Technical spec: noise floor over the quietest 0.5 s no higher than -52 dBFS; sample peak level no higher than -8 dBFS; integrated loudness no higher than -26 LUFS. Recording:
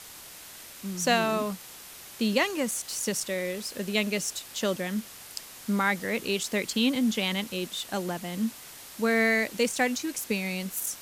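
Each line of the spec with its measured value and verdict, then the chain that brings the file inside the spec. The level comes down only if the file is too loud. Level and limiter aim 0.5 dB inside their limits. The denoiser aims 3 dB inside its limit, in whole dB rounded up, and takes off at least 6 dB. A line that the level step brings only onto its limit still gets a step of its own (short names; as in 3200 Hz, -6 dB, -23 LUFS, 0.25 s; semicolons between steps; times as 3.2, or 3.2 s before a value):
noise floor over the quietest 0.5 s -46 dBFS: fail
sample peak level -10.0 dBFS: OK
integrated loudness -28.0 LUFS: OK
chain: denoiser 9 dB, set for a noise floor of -46 dBFS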